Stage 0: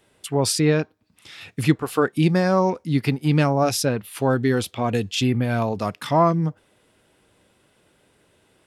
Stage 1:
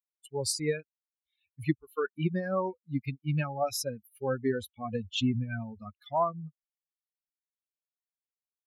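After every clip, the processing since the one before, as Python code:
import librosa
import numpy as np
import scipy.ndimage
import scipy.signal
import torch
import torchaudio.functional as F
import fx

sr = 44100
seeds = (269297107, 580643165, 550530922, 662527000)

y = fx.bin_expand(x, sr, power=3.0)
y = fx.rider(y, sr, range_db=5, speed_s=2.0)
y = y * librosa.db_to_amplitude(-5.0)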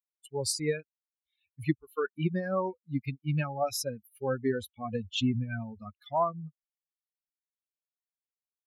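y = x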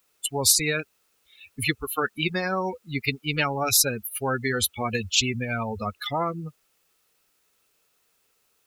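y = fx.small_body(x, sr, hz=(440.0, 1300.0, 2600.0), ring_ms=25, db=8)
y = fx.spectral_comp(y, sr, ratio=4.0)
y = y * librosa.db_to_amplitude(8.0)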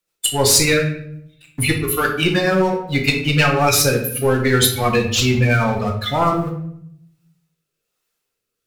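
y = fx.leveller(x, sr, passes=3)
y = fx.rotary_switch(y, sr, hz=6.7, then_hz=1.2, switch_at_s=3.15)
y = fx.room_shoebox(y, sr, seeds[0], volume_m3=150.0, walls='mixed', distance_m=0.83)
y = y * librosa.db_to_amplitude(-1.0)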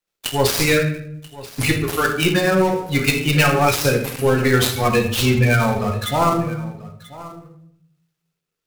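y = fx.dead_time(x, sr, dead_ms=0.071)
y = y + 10.0 ** (-18.5 / 20.0) * np.pad(y, (int(985 * sr / 1000.0), 0))[:len(y)]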